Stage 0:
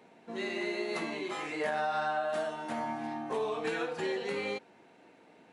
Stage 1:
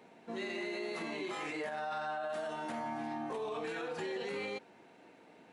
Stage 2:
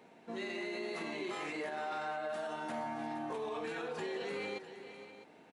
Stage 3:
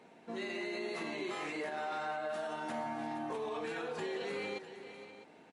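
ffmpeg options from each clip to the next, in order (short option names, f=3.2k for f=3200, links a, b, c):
-af "alimiter=level_in=7dB:limit=-24dB:level=0:latency=1:release=36,volume=-7dB"
-af "aecho=1:1:468|653:0.237|0.188,volume=-1dB"
-af "volume=1dB" -ar 32000 -c:a libmp3lame -b:a 48k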